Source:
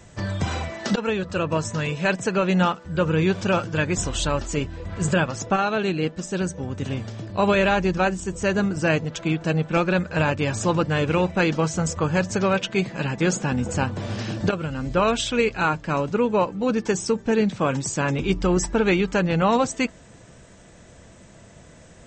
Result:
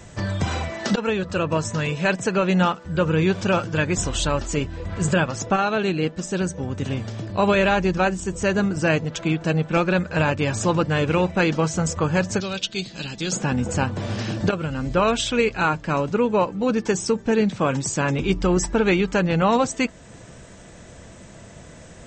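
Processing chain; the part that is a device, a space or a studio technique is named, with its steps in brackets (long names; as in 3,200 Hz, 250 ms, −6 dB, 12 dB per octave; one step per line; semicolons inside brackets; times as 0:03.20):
0:12.40–0:13.32: octave-band graphic EQ 125/250/500/1,000/2,000/4,000 Hz −10/−5/−9/−11/−10/+9 dB
parallel compression (in parallel at −3 dB: downward compressor, threshold −35 dBFS, peak gain reduction 18.5 dB)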